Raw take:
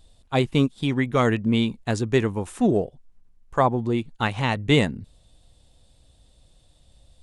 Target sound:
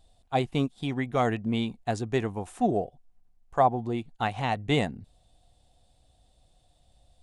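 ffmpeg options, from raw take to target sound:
-af "equalizer=f=730:t=o:w=0.31:g=12,volume=0.447"

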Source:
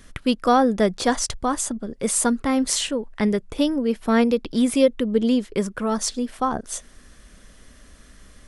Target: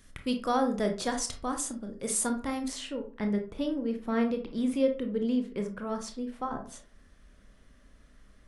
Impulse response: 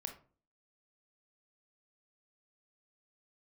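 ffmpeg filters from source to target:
-filter_complex "[0:a]asetnsamples=n=441:p=0,asendcmd='2.68 highshelf g -10',highshelf=f=4600:g=4.5[s0];[1:a]atrim=start_sample=2205[s1];[s0][s1]afir=irnorm=-1:irlink=0,volume=0.422"

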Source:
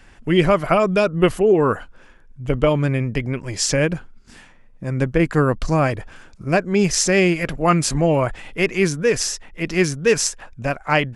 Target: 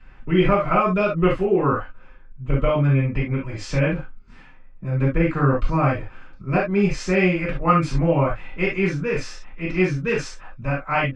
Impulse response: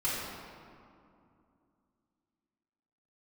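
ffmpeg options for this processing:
-filter_complex "[0:a]lowpass=2800[s0];[1:a]atrim=start_sample=2205,atrim=end_sample=3528[s1];[s0][s1]afir=irnorm=-1:irlink=0,volume=0.473"

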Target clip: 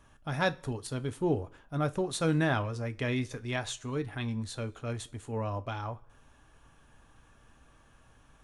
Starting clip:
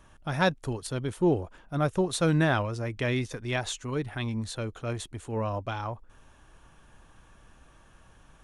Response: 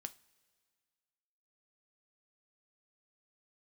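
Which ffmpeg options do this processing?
-filter_complex "[1:a]atrim=start_sample=2205,afade=t=out:st=0.37:d=0.01,atrim=end_sample=16758,asetrate=57330,aresample=44100[s0];[0:a][s0]afir=irnorm=-1:irlink=0,volume=1.41"

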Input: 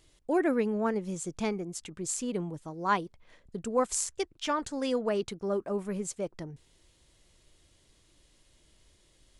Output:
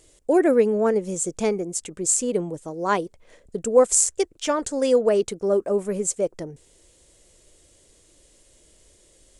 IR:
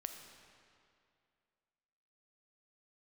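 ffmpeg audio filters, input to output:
-af "equalizer=f=125:t=o:w=1:g=-3,equalizer=f=500:t=o:w=1:g=9,equalizer=f=1000:t=o:w=1:g=-3,equalizer=f=4000:t=o:w=1:g=-3,equalizer=f=8000:t=o:w=1:g=10,volume=1.68"

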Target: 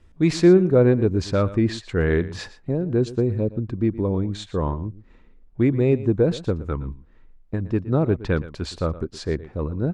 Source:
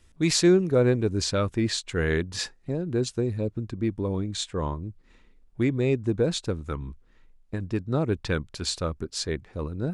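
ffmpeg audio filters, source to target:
-filter_complex "[0:a]lowpass=f=1200:p=1,asplit=2[s0][s1];[s1]aecho=0:1:117:0.15[s2];[s0][s2]amix=inputs=2:normalize=0,volume=1.88"

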